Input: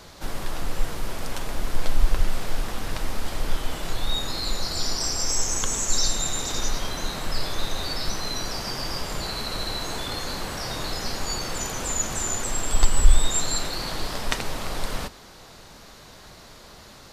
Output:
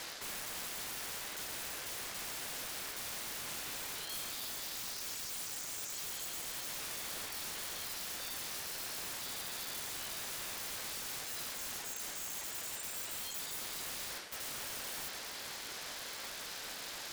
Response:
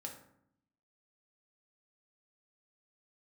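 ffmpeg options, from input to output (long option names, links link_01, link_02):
-af "highpass=frequency=940:width=0.5412,highpass=frequency=940:width=1.3066,areverse,acompressor=threshold=-42dB:ratio=16,areverse,aeval=exprs='(mod(126*val(0)+1,2)-1)/126':channel_layout=same,aeval=exprs='val(0)*sin(2*PI*520*n/s)':channel_layout=same,volume=8.5dB"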